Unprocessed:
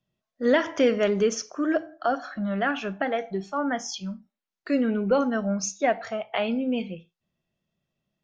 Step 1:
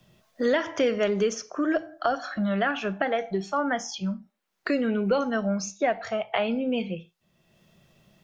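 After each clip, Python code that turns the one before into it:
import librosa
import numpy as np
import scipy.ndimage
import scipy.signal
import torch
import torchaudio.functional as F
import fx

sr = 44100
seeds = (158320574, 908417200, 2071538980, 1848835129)

y = fx.peak_eq(x, sr, hz=260.0, db=-4.5, octaves=0.34)
y = fx.band_squash(y, sr, depth_pct=70)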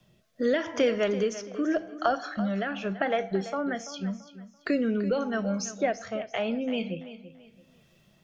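y = fx.rotary(x, sr, hz=0.85)
y = fx.echo_feedback(y, sr, ms=336, feedback_pct=30, wet_db=-14)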